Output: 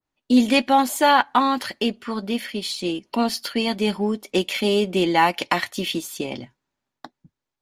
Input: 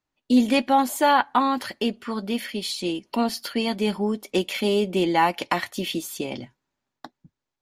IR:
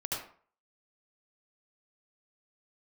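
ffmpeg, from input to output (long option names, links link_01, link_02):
-filter_complex "[0:a]highshelf=frequency=12000:gain=-5.5,asplit=2[link_01][link_02];[link_02]aeval=exprs='sgn(val(0))*max(abs(val(0))-0.0168,0)':channel_layout=same,volume=-12dB[link_03];[link_01][link_03]amix=inputs=2:normalize=0,adynamicequalizer=threshold=0.0398:dfrequency=1700:dqfactor=0.7:tfrequency=1700:tqfactor=0.7:attack=5:release=100:ratio=0.375:range=2:mode=boostabove:tftype=highshelf"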